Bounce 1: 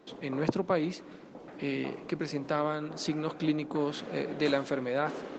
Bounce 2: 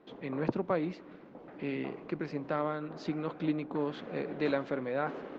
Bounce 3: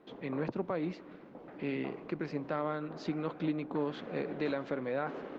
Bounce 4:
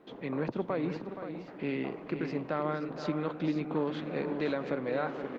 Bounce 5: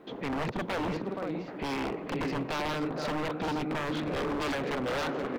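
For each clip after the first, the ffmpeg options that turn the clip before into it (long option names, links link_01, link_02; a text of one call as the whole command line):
ffmpeg -i in.wav -af "lowpass=2700,volume=-2.5dB" out.wav
ffmpeg -i in.wav -af "alimiter=limit=-23.5dB:level=0:latency=1:release=139" out.wav
ffmpeg -i in.wav -af "aecho=1:1:473|525:0.316|0.299,volume=2dB" out.wav
ffmpeg -i in.wav -af "aeval=exprs='0.0251*(abs(mod(val(0)/0.0251+3,4)-2)-1)':channel_layout=same,volume=6dB" out.wav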